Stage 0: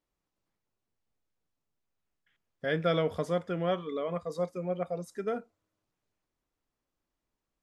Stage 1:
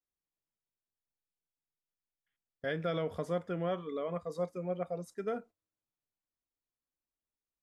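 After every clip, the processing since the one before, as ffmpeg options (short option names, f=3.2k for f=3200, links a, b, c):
-af "agate=range=-12dB:threshold=-49dB:ratio=16:detection=peak,adynamicequalizer=threshold=0.00282:dfrequency=4400:dqfactor=0.71:tfrequency=4400:tqfactor=0.71:attack=5:release=100:ratio=0.375:range=2.5:mode=cutabove:tftype=bell,alimiter=limit=-21.5dB:level=0:latency=1:release=88,volume=-3dB"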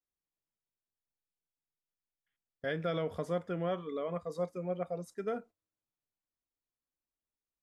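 -af anull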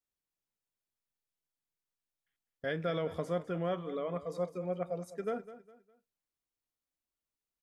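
-af "aecho=1:1:204|408|612:0.178|0.0605|0.0206"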